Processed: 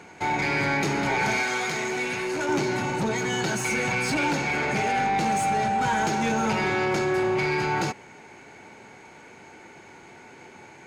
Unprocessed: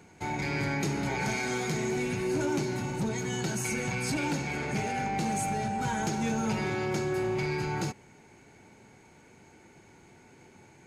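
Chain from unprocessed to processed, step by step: overdrive pedal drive 14 dB, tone 2700 Hz, clips at -19.5 dBFS; 1.43–2.49 low shelf 460 Hz -9 dB; gain +4.5 dB

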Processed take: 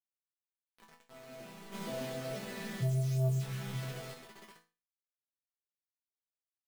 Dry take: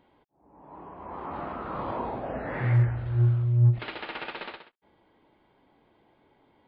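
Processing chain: arpeggiated vocoder bare fifth, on C3, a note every 0.466 s; reverb RT60 1.2 s, pre-delay 3 ms, DRR 8 dB; bit-crush 6-bit; 1.72–4.14 sample leveller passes 2; dynamic EQ 970 Hz, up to -6 dB, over -47 dBFS, Q 6; resonator bank E3 sus4, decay 0.32 s; gain +1.5 dB

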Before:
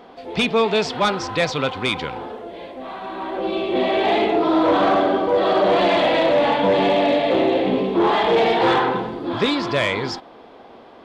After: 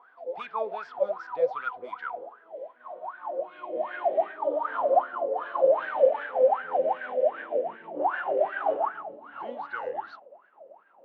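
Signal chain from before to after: gliding pitch shift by -3.5 st starting unshifted; wah 2.6 Hz 510–1600 Hz, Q 21; gain +7 dB

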